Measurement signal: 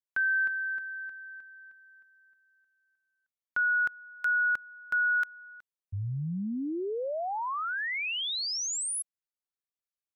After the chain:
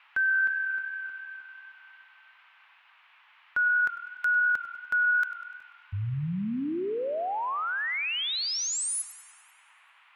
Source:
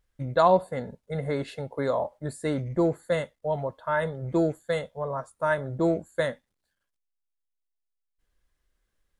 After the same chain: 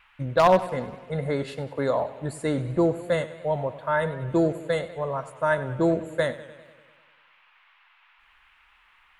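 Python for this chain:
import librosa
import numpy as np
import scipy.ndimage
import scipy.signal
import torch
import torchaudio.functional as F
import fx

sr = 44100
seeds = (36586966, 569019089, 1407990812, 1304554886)

y = np.minimum(x, 2.0 * 10.0 ** (-13.0 / 20.0) - x)
y = fx.dmg_noise_band(y, sr, seeds[0], low_hz=870.0, high_hz=2900.0, level_db=-62.0)
y = fx.echo_warbled(y, sr, ms=98, feedback_pct=63, rate_hz=2.8, cents=81, wet_db=-15.5)
y = F.gain(torch.from_numpy(y), 2.0).numpy()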